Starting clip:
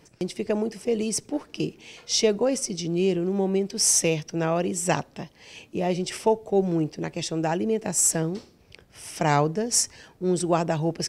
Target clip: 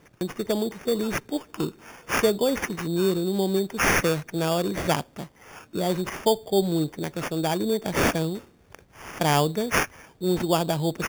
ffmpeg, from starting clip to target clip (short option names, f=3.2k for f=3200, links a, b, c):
-af "acrusher=samples=11:mix=1:aa=0.000001"